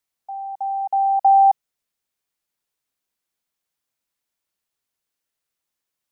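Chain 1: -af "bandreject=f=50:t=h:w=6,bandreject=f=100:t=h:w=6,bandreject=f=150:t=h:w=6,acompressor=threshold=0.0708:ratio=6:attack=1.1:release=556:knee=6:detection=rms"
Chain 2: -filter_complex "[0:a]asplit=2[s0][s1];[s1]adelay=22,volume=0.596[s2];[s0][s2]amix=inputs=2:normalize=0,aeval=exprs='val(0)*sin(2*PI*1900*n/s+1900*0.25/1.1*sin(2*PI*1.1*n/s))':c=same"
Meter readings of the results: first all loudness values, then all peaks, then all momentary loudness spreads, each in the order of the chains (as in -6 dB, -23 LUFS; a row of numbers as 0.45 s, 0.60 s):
-27.5 LUFS, -18.0 LUFS; -19.5 dBFS, -7.5 dBFS; 10 LU, 19 LU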